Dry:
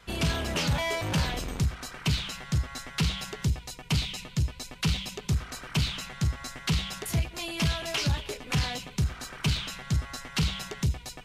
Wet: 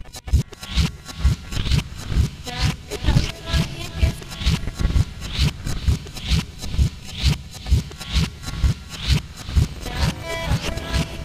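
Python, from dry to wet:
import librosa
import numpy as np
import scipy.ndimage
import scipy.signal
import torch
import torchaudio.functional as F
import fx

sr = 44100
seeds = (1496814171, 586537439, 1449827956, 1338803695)

y = x[::-1].copy()
y = fx.dmg_wind(y, sr, seeds[0], corner_hz=100.0, level_db=-36.0)
y = fx.transient(y, sr, attack_db=12, sustain_db=-11)
y = fx.echo_diffused(y, sr, ms=473, feedback_pct=52, wet_db=-11.0)
y = y * 10.0 ** (1.0 / 20.0)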